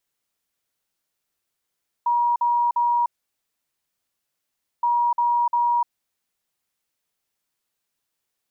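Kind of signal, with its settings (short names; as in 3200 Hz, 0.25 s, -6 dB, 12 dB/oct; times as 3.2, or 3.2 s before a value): beep pattern sine 955 Hz, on 0.30 s, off 0.05 s, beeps 3, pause 1.77 s, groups 2, -17 dBFS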